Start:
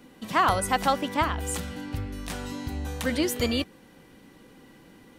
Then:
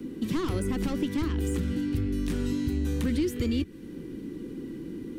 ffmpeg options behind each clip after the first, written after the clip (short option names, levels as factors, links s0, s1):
-filter_complex "[0:a]asoftclip=type=tanh:threshold=0.0708,lowshelf=f=500:t=q:w=3:g=11.5,acrossover=split=110|1300|2600[s0][s1][s2][s3];[s0]acompressor=threshold=0.0282:ratio=4[s4];[s1]acompressor=threshold=0.0355:ratio=4[s5];[s2]acompressor=threshold=0.00501:ratio=4[s6];[s3]acompressor=threshold=0.00631:ratio=4[s7];[s4][s5][s6][s7]amix=inputs=4:normalize=0"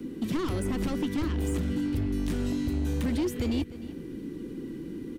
-filter_complex "[0:a]asoftclip=type=hard:threshold=0.0668,asplit=2[s0][s1];[s1]adelay=303.2,volume=0.178,highshelf=f=4000:g=-6.82[s2];[s0][s2]amix=inputs=2:normalize=0"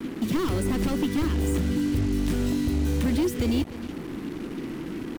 -af "acrusher=bits=6:mix=0:aa=0.5,volume=1.58"